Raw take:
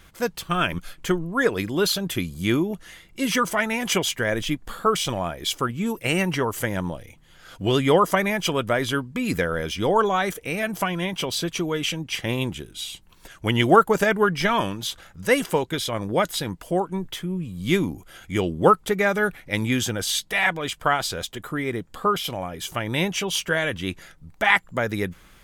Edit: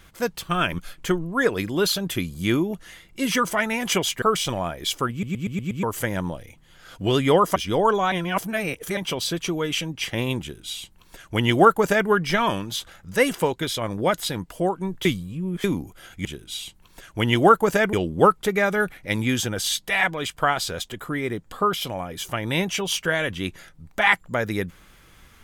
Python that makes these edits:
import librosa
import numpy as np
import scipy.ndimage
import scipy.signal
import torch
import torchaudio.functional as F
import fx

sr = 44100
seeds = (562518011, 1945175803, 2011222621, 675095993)

y = fx.edit(x, sr, fx.cut(start_s=4.22, length_s=0.6),
    fx.stutter_over(start_s=5.71, slice_s=0.12, count=6),
    fx.cut(start_s=8.16, length_s=1.51),
    fx.reverse_span(start_s=10.23, length_s=0.85),
    fx.duplicate(start_s=12.52, length_s=1.68, to_s=18.36),
    fx.reverse_span(start_s=17.16, length_s=0.59), tone=tone)